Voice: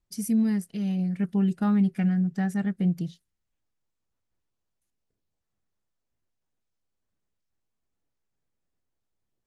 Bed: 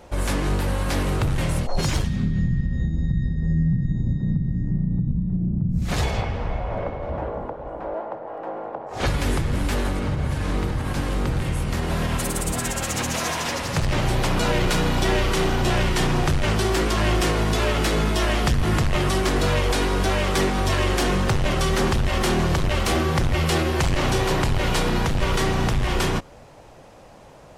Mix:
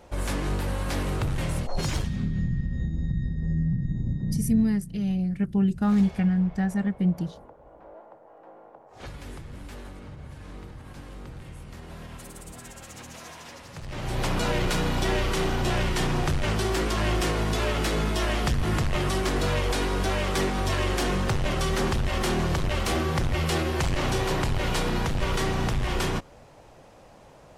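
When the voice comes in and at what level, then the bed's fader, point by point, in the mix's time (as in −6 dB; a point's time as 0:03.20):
4.20 s, +1.0 dB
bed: 0:04.57 −5 dB
0:04.78 −17.5 dB
0:13.79 −17.5 dB
0:14.23 −4.5 dB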